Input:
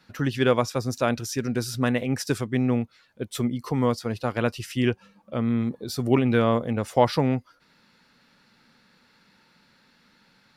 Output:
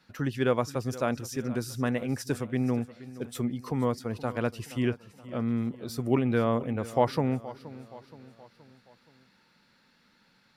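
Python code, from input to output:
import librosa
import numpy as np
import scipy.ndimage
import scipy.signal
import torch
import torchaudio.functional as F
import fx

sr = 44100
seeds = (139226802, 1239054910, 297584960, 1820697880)

y = fx.dynamic_eq(x, sr, hz=3900.0, q=0.84, threshold_db=-44.0, ratio=4.0, max_db=-5)
y = fx.echo_feedback(y, sr, ms=473, feedback_pct=49, wet_db=-17)
y = y * 10.0 ** (-4.5 / 20.0)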